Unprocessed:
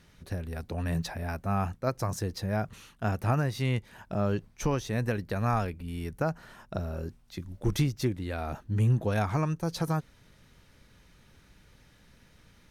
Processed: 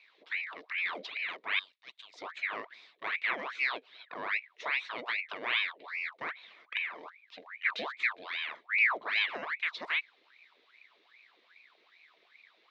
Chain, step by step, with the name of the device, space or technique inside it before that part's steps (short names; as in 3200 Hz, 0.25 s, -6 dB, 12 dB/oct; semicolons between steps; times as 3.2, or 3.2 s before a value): 1.59–2.14 Bessel high-pass 2900 Hz, order 2; voice changer toy (ring modulator with a swept carrier 1400 Hz, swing 75%, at 2.5 Hz; speaker cabinet 520–4200 Hz, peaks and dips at 540 Hz -6 dB, 820 Hz -8 dB, 1400 Hz -5 dB, 2200 Hz +6 dB, 3800 Hz +9 dB); gain -2.5 dB